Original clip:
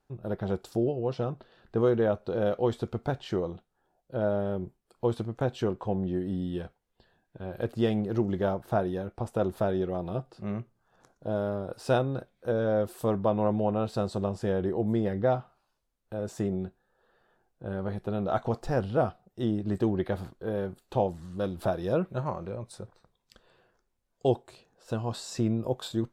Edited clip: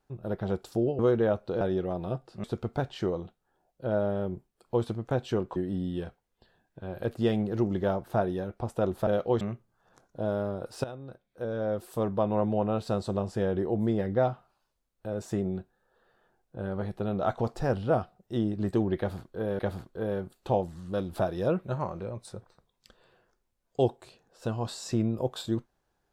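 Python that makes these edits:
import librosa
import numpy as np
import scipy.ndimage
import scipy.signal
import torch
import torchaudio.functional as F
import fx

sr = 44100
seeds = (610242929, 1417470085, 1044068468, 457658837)

y = fx.edit(x, sr, fx.cut(start_s=0.99, length_s=0.79),
    fx.swap(start_s=2.4, length_s=0.34, other_s=9.65, other_length_s=0.83),
    fx.cut(start_s=5.86, length_s=0.28),
    fx.fade_in_from(start_s=11.91, length_s=2.07, curve='qsin', floor_db=-18.5),
    fx.repeat(start_s=20.05, length_s=0.61, count=2), tone=tone)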